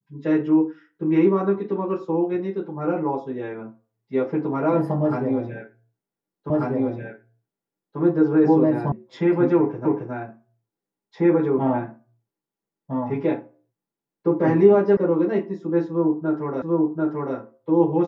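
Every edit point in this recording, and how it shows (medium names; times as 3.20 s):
6.50 s: repeat of the last 1.49 s
8.92 s: sound stops dead
9.85 s: repeat of the last 0.27 s
14.97 s: sound stops dead
16.62 s: repeat of the last 0.74 s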